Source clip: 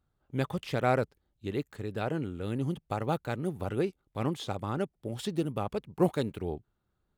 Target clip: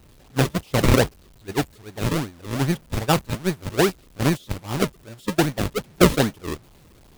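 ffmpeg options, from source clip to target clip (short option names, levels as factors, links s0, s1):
-filter_complex "[0:a]aeval=exprs='val(0)+0.5*0.0335*sgn(val(0))':c=same,agate=range=0.0631:threshold=0.0447:ratio=16:detection=peak,acrossover=split=2200[s0][s1];[s0]acrusher=samples=41:mix=1:aa=0.000001:lfo=1:lforange=41:lforate=2.5[s2];[s2][s1]amix=inputs=2:normalize=0,volume=2.82"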